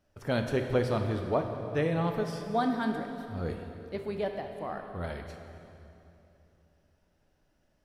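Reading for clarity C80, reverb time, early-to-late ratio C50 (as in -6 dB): 6.5 dB, 3.0 s, 5.5 dB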